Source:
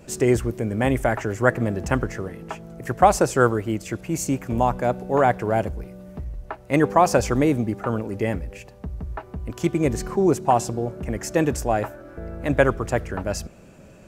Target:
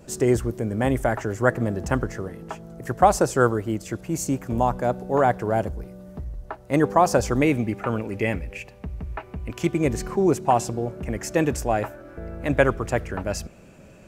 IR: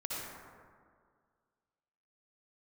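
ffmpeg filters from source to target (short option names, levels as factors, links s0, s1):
-af "asetnsamples=n=441:p=0,asendcmd='7.42 equalizer g 9.5;9.64 equalizer g 2.5',equalizer=f=2400:t=o:w=0.66:g=-5,volume=0.891"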